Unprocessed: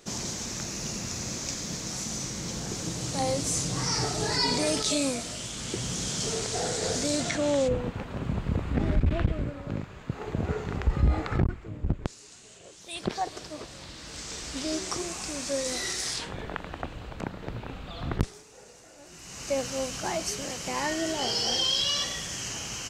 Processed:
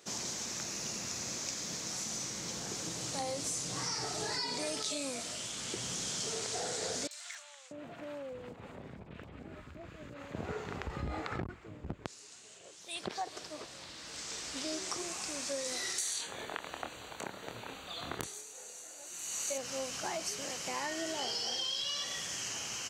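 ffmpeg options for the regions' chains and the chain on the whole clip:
-filter_complex "[0:a]asettb=1/sr,asplit=3[s0][s1][s2];[s0]atrim=end=7.074[s3];[s1]atrim=start=7.07:end=10.35,asetpts=PTS-STARTPTS,afade=t=in:d=0.004:c=qsin,afade=t=out:st=3.276:d=0.004:c=qsin,acompressor=threshold=0.0224:ratio=16:attack=3.2:release=140:knee=1:detection=peak,asoftclip=type=hard:threshold=0.0355,acrossover=split=1000|4700[s4][s5][s6];[s6]adelay=40[s7];[s4]adelay=640[s8];[s8][s5][s7]amix=inputs=3:normalize=0,atrim=end_sample=144648[s9];[s2]atrim=start=10.346[s10];[s3][s9]acrossfade=d=0.004:c1=hsin:c2=qsin[s11];[s11][s10]acrossfade=d=0.004:c1=qsin:c2=hsin,asettb=1/sr,asplit=3[s12][s13][s14];[s12]atrim=end=15.984[s15];[s13]atrim=start=15.98:end=19.58,asetpts=PTS-STARTPTS,afade=t=in:d=0.004:c=qsin,afade=t=out:st=3.596:d=0.004:c=qsin,asuperstop=centerf=5200:order=8:qfactor=5.7,bass=f=250:g=-6,treble=f=4000:g=11,asplit=2[s16][s17];[s17]adelay=26,volume=0.531[s18];[s16][s18]amix=inputs=2:normalize=0,atrim=end_sample=158760[s19];[s14]atrim=start=19.576[s20];[s15][s19]acrossfade=d=0.004:c1=hsin:c2=qsin[s21];[s21][s20]acrossfade=d=0.004:c1=qsin:c2=hsin,highpass=65,lowshelf=f=270:g=-10.5,acompressor=threshold=0.0316:ratio=6,volume=0.708"

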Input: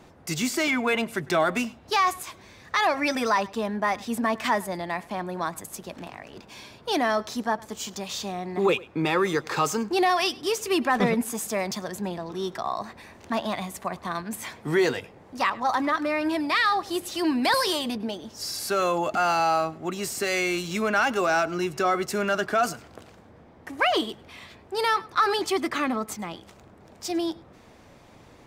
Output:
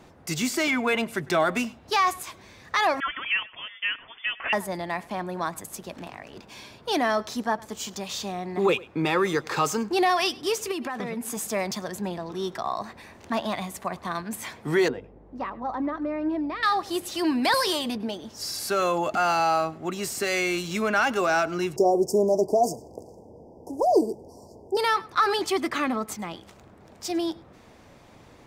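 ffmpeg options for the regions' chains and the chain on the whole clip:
-filter_complex "[0:a]asettb=1/sr,asplit=3[s0][s1][s2];[s0]atrim=end=3.004[s3];[s1]atrim=start=3:end=4.53,asetpts=PTS-STARTPTS,afade=t=in:d=0.004:c=qsin,afade=t=out:st=1.526:d=0.004:c=qsin,highpass=1000,lowpass=f=3100:t=q:w=0.5098,lowpass=f=3100:t=q:w=0.6013,lowpass=f=3100:t=q:w=0.9,lowpass=f=3100:t=q:w=2.563,afreqshift=-3700[s4];[s2]atrim=start=4.526[s5];[s3][s4]acrossfade=d=0.004:c1=hsin:c2=qsin[s6];[s6][s5]acrossfade=d=0.004:c1=qsin:c2=hsin,asettb=1/sr,asplit=3[s7][s8][s9];[s7]atrim=end=10.714[s10];[s8]atrim=start=10.71:end=11.37,asetpts=PTS-STARTPTS,afade=t=in:d=0.004:c=qsin,afade=t=out:st=0.656:d=0.004:c=qsin,highpass=77,acompressor=threshold=0.0447:ratio=10:attack=3.2:release=140:knee=1:detection=peak[s11];[s9]atrim=start=11.366[s12];[s10][s11]acrossfade=d=0.004:c1=hsin:c2=qsin[s13];[s13][s12]acrossfade=d=0.004:c1=qsin:c2=hsin,asettb=1/sr,asplit=3[s14][s15][s16];[s14]atrim=end=14.884[s17];[s15]atrim=start=14.88:end=16.63,asetpts=PTS-STARTPTS,afade=t=in:d=0.004:c=qsin,afade=t=out:st=1.746:d=0.004:c=qsin,bandpass=f=290:t=q:w=0.74,aeval=exprs='val(0)+0.00251*(sin(2*PI*50*n/s)+sin(2*PI*2*50*n/s)/2+sin(2*PI*3*50*n/s)/3+sin(2*PI*4*50*n/s)/4+sin(2*PI*5*50*n/s)/5)':c=same[s18];[s16]atrim=start=16.626[s19];[s17][s18]acrossfade=d=0.004:c1=hsin:c2=qsin[s20];[s20][s19]acrossfade=d=0.004:c1=qsin:c2=hsin,asettb=1/sr,asplit=3[s21][s22][s23];[s21]atrim=end=21.764[s24];[s22]atrim=start=21.76:end=24.77,asetpts=PTS-STARTPTS,afade=t=in:d=0.004:c=qsin,afade=t=out:st=3.006:d=0.004:c=qsin,asoftclip=type=hard:threshold=0.2,asuperstop=centerf=2200:order=20:qfactor=0.56,equalizer=f=440:w=1.3:g=8.5[s25];[s23]atrim=start=24.766[s26];[s24][s25]acrossfade=d=0.004:c1=hsin:c2=qsin[s27];[s27][s26]acrossfade=d=0.004:c1=qsin:c2=hsin"

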